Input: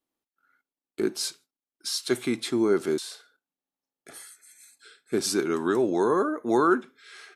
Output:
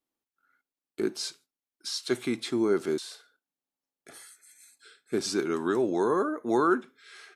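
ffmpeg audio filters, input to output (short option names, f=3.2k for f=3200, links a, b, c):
-filter_complex "[0:a]acrossover=split=8000[a][b];[b]acompressor=threshold=-48dB:ratio=4:attack=1:release=60[c];[a][c]amix=inputs=2:normalize=0,volume=-2.5dB"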